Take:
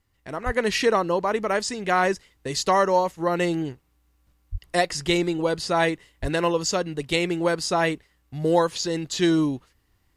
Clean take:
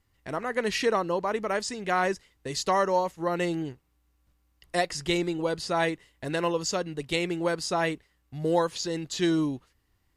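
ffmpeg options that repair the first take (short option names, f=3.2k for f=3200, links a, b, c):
-filter_complex "[0:a]asplit=3[a][b][c];[a]afade=t=out:st=0.45:d=0.02[d];[b]highpass=f=140:w=0.5412,highpass=f=140:w=1.3066,afade=t=in:st=0.45:d=0.02,afade=t=out:st=0.57:d=0.02[e];[c]afade=t=in:st=0.57:d=0.02[f];[d][e][f]amix=inputs=3:normalize=0,asplit=3[g][h][i];[g]afade=t=out:st=4.51:d=0.02[j];[h]highpass=f=140:w=0.5412,highpass=f=140:w=1.3066,afade=t=in:st=4.51:d=0.02,afade=t=out:st=4.63:d=0.02[k];[i]afade=t=in:st=4.63:d=0.02[l];[j][k][l]amix=inputs=3:normalize=0,asplit=3[m][n][o];[m]afade=t=out:st=6.21:d=0.02[p];[n]highpass=f=140:w=0.5412,highpass=f=140:w=1.3066,afade=t=in:st=6.21:d=0.02,afade=t=out:st=6.33:d=0.02[q];[o]afade=t=in:st=6.33:d=0.02[r];[p][q][r]amix=inputs=3:normalize=0,asetnsamples=n=441:p=0,asendcmd='0.46 volume volume -4.5dB',volume=0dB"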